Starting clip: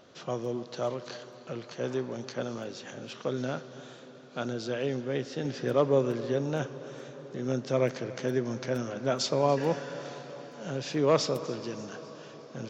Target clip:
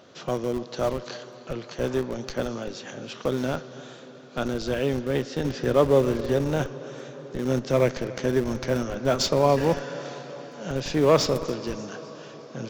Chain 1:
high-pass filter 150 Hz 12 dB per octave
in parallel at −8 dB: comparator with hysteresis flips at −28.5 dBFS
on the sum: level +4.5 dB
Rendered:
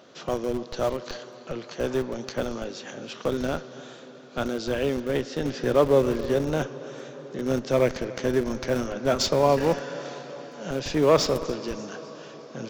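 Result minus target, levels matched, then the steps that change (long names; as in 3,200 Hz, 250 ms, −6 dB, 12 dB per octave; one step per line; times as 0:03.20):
125 Hz band −3.0 dB
change: high-pass filter 68 Hz 12 dB per octave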